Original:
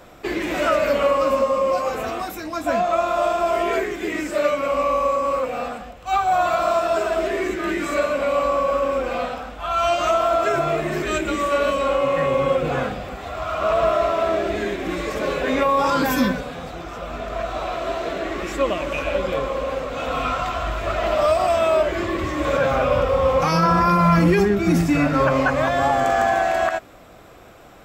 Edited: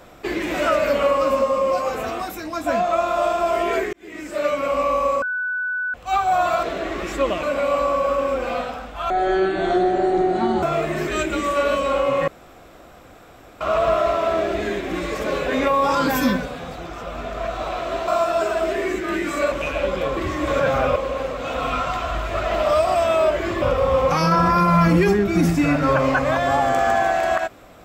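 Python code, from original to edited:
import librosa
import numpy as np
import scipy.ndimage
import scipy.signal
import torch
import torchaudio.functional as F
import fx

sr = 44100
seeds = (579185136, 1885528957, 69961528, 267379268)

y = fx.edit(x, sr, fx.fade_in_span(start_s=3.93, length_s=0.65),
    fx.bleep(start_s=5.22, length_s=0.72, hz=1490.0, db=-21.5),
    fx.swap(start_s=6.63, length_s=1.44, other_s=18.03, other_length_s=0.8),
    fx.speed_span(start_s=9.74, length_s=0.84, speed=0.55),
    fx.room_tone_fill(start_s=12.23, length_s=1.33),
    fx.move(start_s=22.14, length_s=0.79, to_s=19.48), tone=tone)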